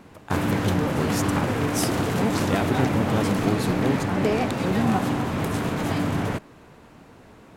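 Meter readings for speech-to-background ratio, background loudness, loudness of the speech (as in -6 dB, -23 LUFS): -4.5 dB, -24.5 LUFS, -29.0 LUFS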